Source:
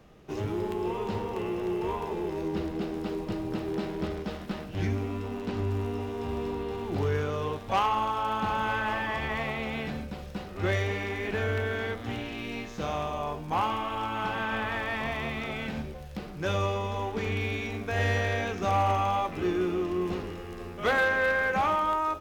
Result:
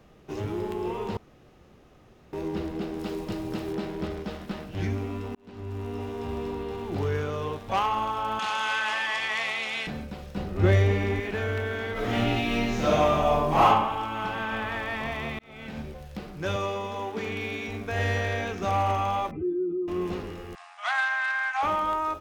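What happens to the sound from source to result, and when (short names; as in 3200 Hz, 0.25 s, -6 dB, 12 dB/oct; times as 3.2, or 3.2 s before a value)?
1.17–2.33 room tone
2.99–3.73 high shelf 3400 Hz +6.5 dB
5.35–6.04 fade in
8.39–9.87 weighting filter ITU-R 468
10.37–11.2 low shelf 490 Hz +10.5 dB
11.92–13.66 reverb throw, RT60 0.82 s, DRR -9.5 dB
15.39–15.88 fade in linear
16.56–17.68 HPF 150 Hz
19.31–19.88 spectral contrast raised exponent 2.3
20.55–21.63 brick-wall FIR band-pass 630–9900 Hz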